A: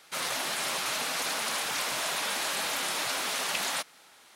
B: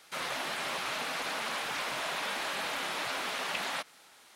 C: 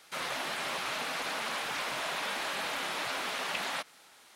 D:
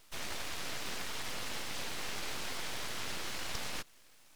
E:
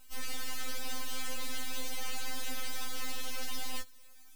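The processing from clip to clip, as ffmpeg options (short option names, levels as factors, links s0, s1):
-filter_complex "[0:a]acrossover=split=3800[s0][s1];[s1]acompressor=threshold=0.00631:ratio=4:attack=1:release=60[s2];[s0][s2]amix=inputs=2:normalize=0,volume=0.841"
-af anull
-af "aeval=exprs='abs(val(0))':c=same,volume=0.794"
-af "highshelf=f=11000:g=12,afftfilt=real='re*3.46*eq(mod(b,12),0)':imag='im*3.46*eq(mod(b,12),0)':win_size=2048:overlap=0.75,volume=1.12"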